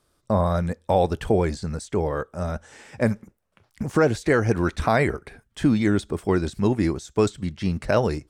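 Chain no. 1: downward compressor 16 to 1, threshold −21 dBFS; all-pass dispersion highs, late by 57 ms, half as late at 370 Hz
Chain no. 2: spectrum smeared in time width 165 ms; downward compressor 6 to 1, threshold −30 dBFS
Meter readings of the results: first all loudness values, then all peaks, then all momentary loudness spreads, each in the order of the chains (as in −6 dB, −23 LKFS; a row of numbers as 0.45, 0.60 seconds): −28.5, −35.0 LKFS; −13.5, −20.0 dBFS; 5, 6 LU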